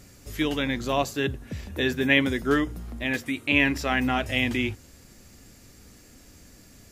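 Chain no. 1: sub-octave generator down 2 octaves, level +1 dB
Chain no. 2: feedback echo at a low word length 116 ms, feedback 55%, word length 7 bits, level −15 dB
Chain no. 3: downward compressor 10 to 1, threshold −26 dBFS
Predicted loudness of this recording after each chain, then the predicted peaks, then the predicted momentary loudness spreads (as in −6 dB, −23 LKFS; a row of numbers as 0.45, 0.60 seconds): −24.5, −25.0, −31.5 LKFS; −4.0, −4.5, −13.5 dBFS; 10, 11, 21 LU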